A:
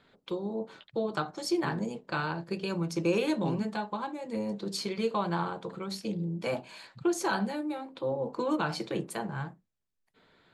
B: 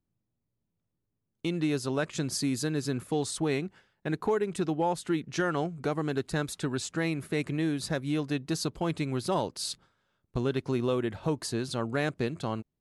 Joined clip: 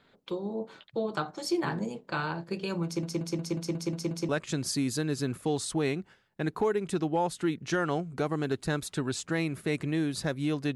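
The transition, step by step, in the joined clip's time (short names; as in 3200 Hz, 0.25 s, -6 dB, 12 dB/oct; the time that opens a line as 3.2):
A
2.85 stutter in place 0.18 s, 8 plays
4.29 switch to B from 1.95 s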